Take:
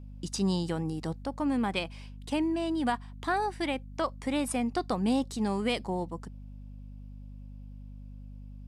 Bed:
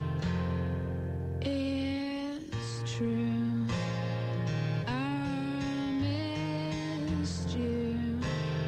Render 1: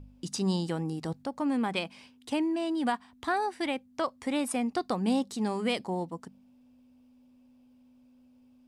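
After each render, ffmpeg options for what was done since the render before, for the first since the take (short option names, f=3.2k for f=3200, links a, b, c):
-af "bandreject=f=50:t=h:w=4,bandreject=f=100:t=h:w=4,bandreject=f=150:t=h:w=4,bandreject=f=200:t=h:w=4"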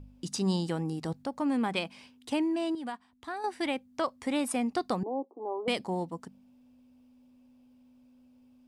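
-filter_complex "[0:a]asettb=1/sr,asplit=3[a][b][c];[a]atrim=end=5.034[d];[b]atrim=start=5.03:end=5.68,asetpts=PTS-STARTPTS,afade=t=in:d=0.004:c=qsin,afade=t=out:st=0.646:d=0.004:c=qsin,asuperpass=centerf=550:order=12:qfactor=0.76[e];[c]atrim=start=5.676[f];[d][e]acrossfade=d=0.004:c1=hsin:c2=qsin[g];[g][f]acrossfade=d=0.004:c1=qsin:c2=hsin,asplit=3[h][i][j];[h]atrim=end=2.752[k];[i]atrim=start=2.748:end=3.442,asetpts=PTS-STARTPTS,volume=-9dB[l];[j]atrim=start=3.438[m];[k][l]acrossfade=d=0.004:c1=hsin:c2=hsin[n];[n][m]acrossfade=d=0.004:c1=hsin:c2=hsin"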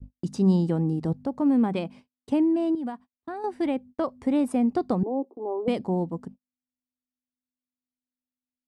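-af "agate=range=-45dB:threshold=-48dB:ratio=16:detection=peak,tiltshelf=f=930:g=9.5"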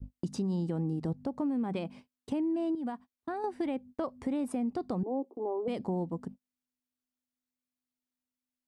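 -af "alimiter=limit=-18.5dB:level=0:latency=1:release=73,acompressor=threshold=-32dB:ratio=2.5"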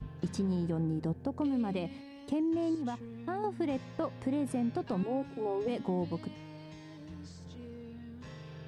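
-filter_complex "[1:a]volume=-14.5dB[a];[0:a][a]amix=inputs=2:normalize=0"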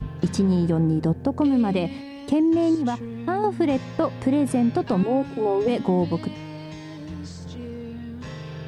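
-af "volume=11.5dB"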